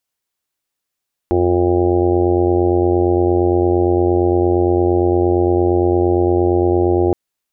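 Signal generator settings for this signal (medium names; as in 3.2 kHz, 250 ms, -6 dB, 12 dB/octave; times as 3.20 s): steady additive tone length 5.82 s, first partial 88.7 Hz, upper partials -16.5/-6/5.5/-3/-7/-8/-8.5/-6 dB, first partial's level -19 dB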